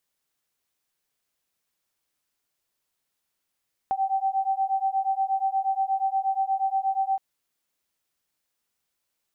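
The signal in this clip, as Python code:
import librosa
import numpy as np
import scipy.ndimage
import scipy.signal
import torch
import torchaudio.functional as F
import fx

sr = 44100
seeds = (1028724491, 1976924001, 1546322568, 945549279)

y = fx.two_tone_beats(sr, length_s=3.27, hz=770.0, beat_hz=8.4, level_db=-25.5)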